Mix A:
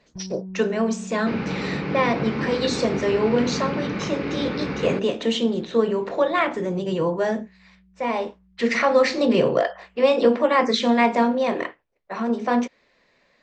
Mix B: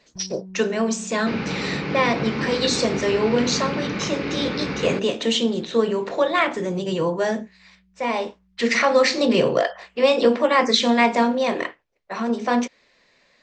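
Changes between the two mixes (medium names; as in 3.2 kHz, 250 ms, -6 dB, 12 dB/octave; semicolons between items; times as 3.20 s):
first sound -4.0 dB; master: add treble shelf 3 kHz +9 dB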